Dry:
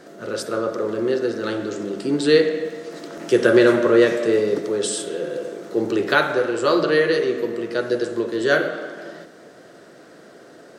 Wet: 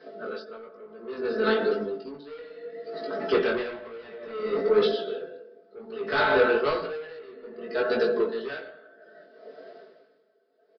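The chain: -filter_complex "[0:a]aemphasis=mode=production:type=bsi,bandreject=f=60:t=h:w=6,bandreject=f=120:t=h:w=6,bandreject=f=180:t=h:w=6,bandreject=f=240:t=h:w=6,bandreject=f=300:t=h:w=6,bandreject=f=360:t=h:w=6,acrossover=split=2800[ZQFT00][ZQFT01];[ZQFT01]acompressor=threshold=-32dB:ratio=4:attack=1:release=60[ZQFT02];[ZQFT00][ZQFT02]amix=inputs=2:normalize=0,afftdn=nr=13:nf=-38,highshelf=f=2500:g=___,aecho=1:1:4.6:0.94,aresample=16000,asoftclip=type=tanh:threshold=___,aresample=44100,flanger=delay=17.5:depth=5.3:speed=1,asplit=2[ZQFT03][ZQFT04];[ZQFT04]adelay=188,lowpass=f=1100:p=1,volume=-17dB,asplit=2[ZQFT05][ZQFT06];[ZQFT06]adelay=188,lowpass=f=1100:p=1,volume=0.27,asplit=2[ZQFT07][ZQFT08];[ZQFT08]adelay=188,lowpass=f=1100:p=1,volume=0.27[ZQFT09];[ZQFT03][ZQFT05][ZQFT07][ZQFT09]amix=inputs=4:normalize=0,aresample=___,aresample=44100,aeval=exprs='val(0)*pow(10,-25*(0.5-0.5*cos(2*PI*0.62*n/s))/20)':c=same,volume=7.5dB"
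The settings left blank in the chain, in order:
-4.5, -19.5dB, 11025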